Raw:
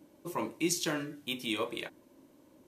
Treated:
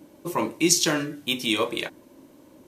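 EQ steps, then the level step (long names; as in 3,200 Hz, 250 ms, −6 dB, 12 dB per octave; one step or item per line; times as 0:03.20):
dynamic equaliser 5,600 Hz, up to +5 dB, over −49 dBFS, Q 1.2
+9.0 dB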